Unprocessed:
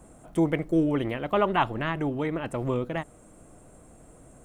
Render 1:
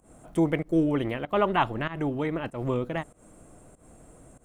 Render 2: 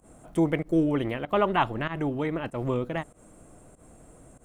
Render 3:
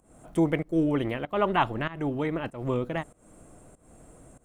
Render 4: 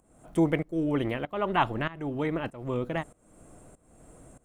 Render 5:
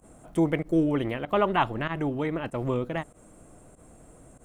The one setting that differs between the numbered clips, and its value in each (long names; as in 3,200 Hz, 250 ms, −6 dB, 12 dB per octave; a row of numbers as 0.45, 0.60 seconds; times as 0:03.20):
fake sidechain pumping, release: 161, 105, 270, 501, 69 milliseconds